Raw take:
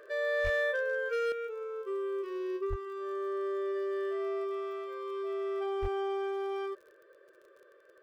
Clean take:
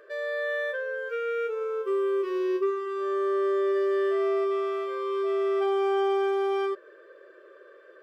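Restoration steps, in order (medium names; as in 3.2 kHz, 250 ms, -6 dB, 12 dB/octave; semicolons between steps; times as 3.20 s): clip repair -25 dBFS; de-click; de-plosive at 0.43/2.69/5.81 s; trim 0 dB, from 1.32 s +8.5 dB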